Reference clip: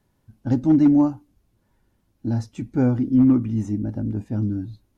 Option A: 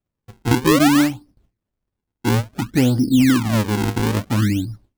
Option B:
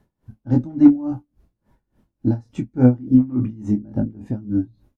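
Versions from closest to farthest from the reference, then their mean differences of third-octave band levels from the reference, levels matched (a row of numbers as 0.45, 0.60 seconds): B, A; 4.5, 13.0 decibels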